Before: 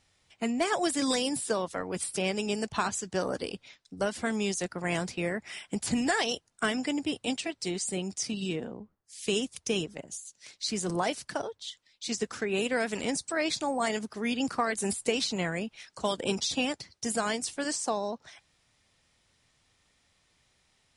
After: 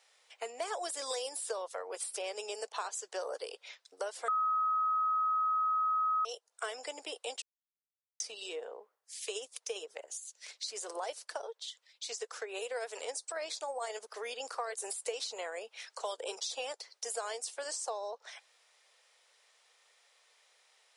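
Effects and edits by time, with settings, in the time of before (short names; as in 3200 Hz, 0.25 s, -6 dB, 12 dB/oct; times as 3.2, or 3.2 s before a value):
4.28–6.25 bleep 1270 Hz -14 dBFS
7.42–8.2 mute
9.17–14.14 tremolo 15 Hz, depth 34%
whole clip: elliptic high-pass 460 Hz, stop band 70 dB; dynamic EQ 2100 Hz, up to -7 dB, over -47 dBFS, Q 0.95; compressor 2:1, threshold -45 dBFS; gain +3.5 dB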